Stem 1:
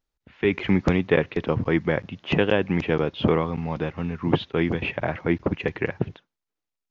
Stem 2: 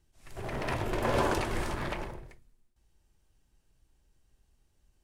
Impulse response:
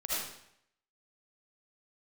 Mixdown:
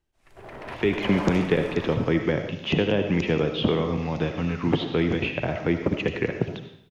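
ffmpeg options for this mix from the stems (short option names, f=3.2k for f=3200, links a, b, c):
-filter_complex "[0:a]acrossover=split=120|580|5000[a][b][c][d];[a]acompressor=threshold=-35dB:ratio=4[e];[b]acompressor=threshold=-21dB:ratio=4[f];[c]acompressor=threshold=-38dB:ratio=4[g];[d]acompressor=threshold=-57dB:ratio=4[h];[e][f][g][h]amix=inputs=4:normalize=0,highshelf=f=2.5k:g=11.5,adelay=400,volume=0dB,asplit=2[i][j];[j]volume=-9dB[k];[1:a]bass=f=250:g=-7,treble=f=4k:g=-9,volume=-3dB[l];[2:a]atrim=start_sample=2205[m];[k][m]afir=irnorm=-1:irlink=0[n];[i][l][n]amix=inputs=3:normalize=0"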